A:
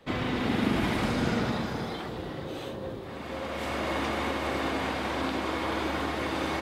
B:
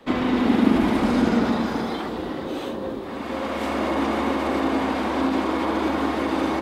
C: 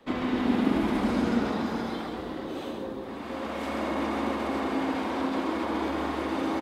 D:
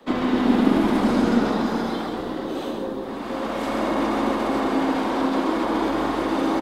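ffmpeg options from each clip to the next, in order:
-filter_complex "[0:a]equalizer=f=125:t=o:w=1:g=-11,equalizer=f=250:t=o:w=1:g=9,equalizer=f=1k:t=o:w=1:g=4,acrossover=split=930[a][b];[b]alimiter=level_in=5dB:limit=-24dB:level=0:latency=1:release=56,volume=-5dB[c];[a][c]amix=inputs=2:normalize=0,volume=4.5dB"
-af "aecho=1:1:134:0.531,volume=-7dB"
-filter_complex "[0:a]equalizer=f=2.3k:t=o:w=0.73:g=-4,acrossover=split=140|2000[a][b][c];[a]aeval=exprs='max(val(0),0)':c=same[d];[d][b][c]amix=inputs=3:normalize=0,volume=7dB"

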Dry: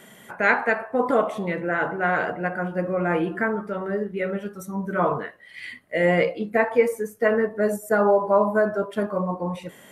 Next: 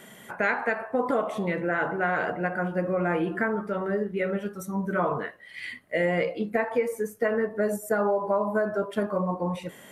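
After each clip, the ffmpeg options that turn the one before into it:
-af "acompressor=threshold=-22dB:ratio=4"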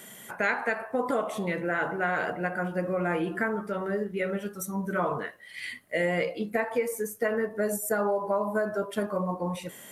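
-af "highshelf=f=4.5k:g=11.5,volume=-2.5dB"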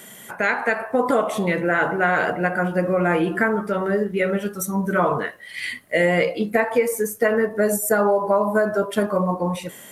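-af "dynaudnorm=f=180:g=7:m=4dB,volume=4.5dB"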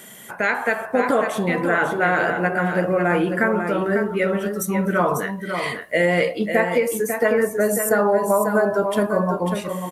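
-af "aecho=1:1:546:0.447"

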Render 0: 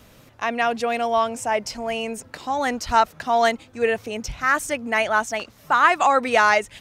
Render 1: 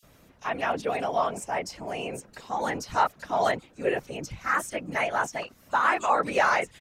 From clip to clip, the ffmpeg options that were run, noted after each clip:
-filter_complex "[0:a]acrossover=split=3700[a][b];[a]adelay=30[c];[c][b]amix=inputs=2:normalize=0,afftfilt=real='hypot(re,im)*cos(2*PI*random(0))':imag='hypot(re,im)*sin(2*PI*random(1))':win_size=512:overlap=0.75"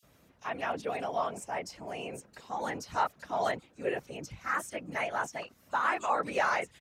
-af "highpass=49,volume=-6dB"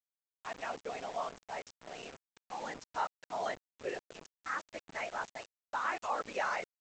-af "equalizer=f=62:t=o:w=2.5:g=-10.5,aresample=16000,aeval=exprs='val(0)*gte(abs(val(0)),0.0112)':c=same,aresample=44100,volume=-5.5dB"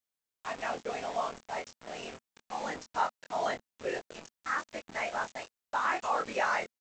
-filter_complex "[0:a]equalizer=f=230:t=o:w=0.25:g=3.5,asplit=2[a][b];[b]adelay=23,volume=-5dB[c];[a][c]amix=inputs=2:normalize=0,volume=3.5dB"

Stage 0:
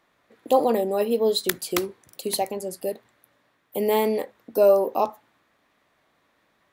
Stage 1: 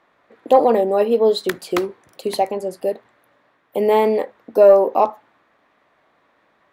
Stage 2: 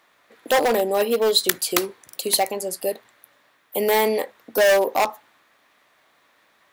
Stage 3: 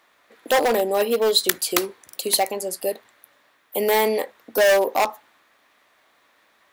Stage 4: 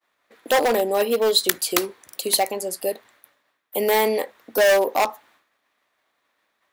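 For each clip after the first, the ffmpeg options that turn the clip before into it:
-filter_complex "[0:a]asplit=2[a][b];[b]highpass=f=720:p=1,volume=10dB,asoftclip=type=tanh:threshold=-3dB[c];[a][c]amix=inputs=2:normalize=0,lowpass=f=1k:p=1,volume=-6dB,volume=6dB"
-af "volume=10.5dB,asoftclip=hard,volume=-10.5dB,crystalizer=i=7.5:c=0,volume=-5dB"
-af "equalizer=f=140:w=2.4:g=-5.5"
-af "agate=range=-33dB:threshold=-52dB:ratio=3:detection=peak"

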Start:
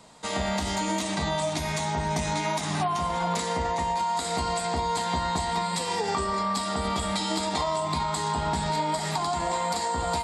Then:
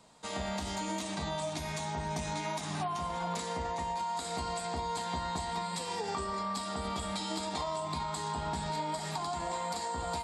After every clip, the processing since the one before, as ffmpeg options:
-af "bandreject=f=2k:w=19,volume=-8dB"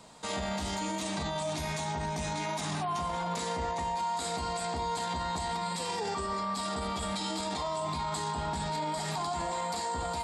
-af "alimiter=level_in=8.5dB:limit=-24dB:level=0:latency=1:release=17,volume=-8.5dB,volume=7dB"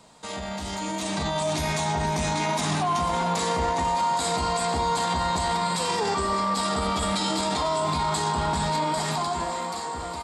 -filter_complex "[0:a]dynaudnorm=f=160:g=13:m=8dB,asplit=8[a][b][c][d][e][f][g][h];[b]adelay=493,afreqshift=86,volume=-14dB[i];[c]adelay=986,afreqshift=172,volume=-18.2dB[j];[d]adelay=1479,afreqshift=258,volume=-22.3dB[k];[e]adelay=1972,afreqshift=344,volume=-26.5dB[l];[f]adelay=2465,afreqshift=430,volume=-30.6dB[m];[g]adelay=2958,afreqshift=516,volume=-34.8dB[n];[h]adelay=3451,afreqshift=602,volume=-38.9dB[o];[a][i][j][k][l][m][n][o]amix=inputs=8:normalize=0"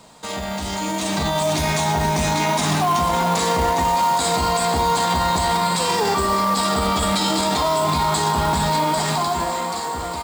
-af "acontrast=47,acrusher=bits=4:mode=log:mix=0:aa=0.000001"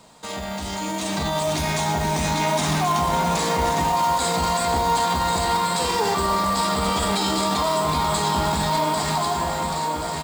-af "aecho=1:1:1082:0.447,volume=-3dB"

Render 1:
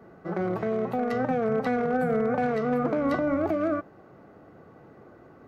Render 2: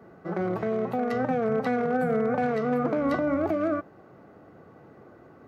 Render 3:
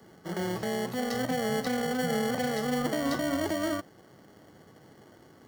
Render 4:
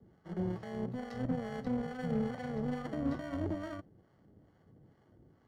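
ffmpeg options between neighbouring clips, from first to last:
-af "highpass=49"
-filter_complex "[0:a]highshelf=f=3.6k:t=q:w=1.5:g=11.5,acrossover=split=300|820|2000[a][b][c][d];[b]acrusher=samples=35:mix=1:aa=0.000001[e];[a][e][c][d]amix=inputs=4:normalize=0,volume=-2.5dB"
-filter_complex "[0:a]acrossover=split=620[a][b];[a]aeval=exprs='val(0)*(1-0.7/2+0.7/2*cos(2*PI*2.3*n/s))':c=same[c];[b]aeval=exprs='val(0)*(1-0.7/2-0.7/2*cos(2*PI*2.3*n/s))':c=same[d];[c][d]amix=inputs=2:normalize=0,aemphasis=mode=reproduction:type=riaa,aeval=exprs='0.178*(cos(1*acos(clip(val(0)/0.178,-1,1)))-cos(1*PI/2))+0.00891*(cos(7*acos(clip(val(0)/0.178,-1,1)))-cos(7*PI/2))':c=same,volume=-8dB"

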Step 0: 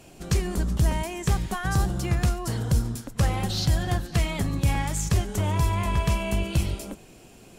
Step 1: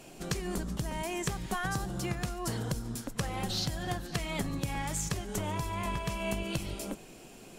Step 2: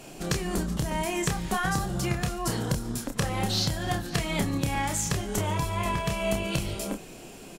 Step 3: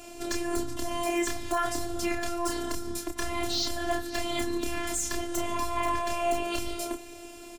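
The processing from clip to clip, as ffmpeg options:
-af "acompressor=threshold=-27dB:ratio=6,equalizer=f=73:t=o:w=1.1:g=-12"
-filter_complex "[0:a]asplit=2[a][b];[b]adelay=29,volume=-5.5dB[c];[a][c]amix=inputs=2:normalize=0,volume=5dB"
-af "afftfilt=real='hypot(re,im)*cos(PI*b)':imag='0':win_size=512:overlap=0.75,asoftclip=type=hard:threshold=-18.5dB,volume=3dB"

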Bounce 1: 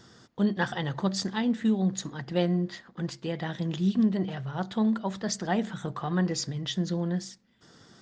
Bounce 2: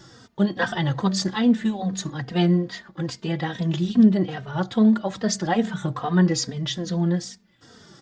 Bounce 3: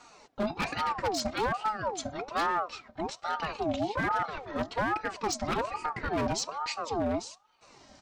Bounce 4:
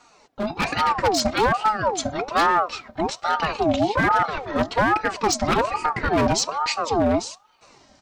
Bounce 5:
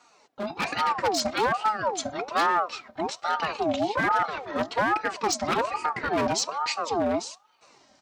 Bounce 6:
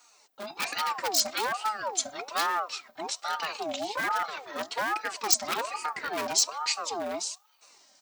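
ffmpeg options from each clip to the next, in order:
-filter_complex "[0:a]asplit=2[a][b];[b]adelay=3,afreqshift=-2.4[c];[a][c]amix=inputs=2:normalize=1,volume=9dB"
-af "aeval=exprs='0.141*(abs(mod(val(0)/0.141+3,4)-2)-1)':c=same,aeval=exprs='val(0)*sin(2*PI*750*n/s+750*0.45/1.2*sin(2*PI*1.2*n/s))':c=same,volume=-3.5dB"
-af "dynaudnorm=f=120:g=9:m=10dB"
-af "highpass=f=250:p=1,volume=-4dB"
-af "aemphasis=mode=production:type=riaa,volume=-5.5dB"

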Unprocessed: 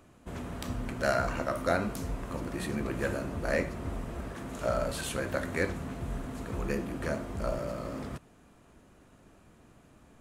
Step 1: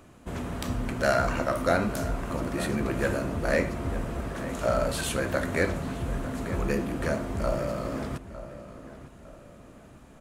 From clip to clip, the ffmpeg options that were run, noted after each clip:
-filter_complex "[0:a]asplit=2[a][b];[b]asoftclip=type=tanh:threshold=-28.5dB,volume=-8dB[c];[a][c]amix=inputs=2:normalize=0,asplit=2[d][e];[e]adelay=905,lowpass=f=2.7k:p=1,volume=-13.5dB,asplit=2[f][g];[g]adelay=905,lowpass=f=2.7k:p=1,volume=0.39,asplit=2[h][i];[i]adelay=905,lowpass=f=2.7k:p=1,volume=0.39,asplit=2[j][k];[k]adelay=905,lowpass=f=2.7k:p=1,volume=0.39[l];[d][f][h][j][l]amix=inputs=5:normalize=0,volume=2.5dB"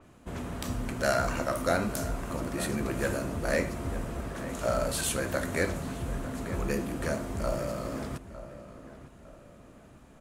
-af "adynamicequalizer=threshold=0.00447:dfrequency=4700:dqfactor=0.7:tfrequency=4700:tqfactor=0.7:attack=5:release=100:ratio=0.375:range=3.5:mode=boostabove:tftype=highshelf,volume=-3dB"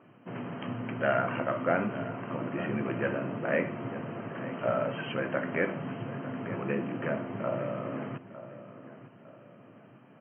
-af "afftfilt=real='re*between(b*sr/4096,100,3200)':imag='im*between(b*sr/4096,100,3200)':win_size=4096:overlap=0.75"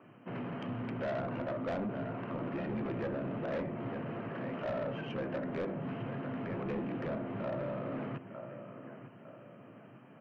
-filter_complex "[0:a]acrossover=split=130|810[a][b][c];[c]acompressor=threshold=-44dB:ratio=12[d];[a][b][d]amix=inputs=3:normalize=0,asoftclip=type=tanh:threshold=-31.5dB"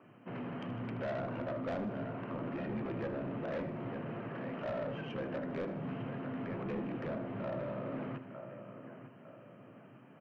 -af "aecho=1:1:77|154|231|308|385|462:0.2|0.12|0.0718|0.0431|0.0259|0.0155,volume=-2dB"

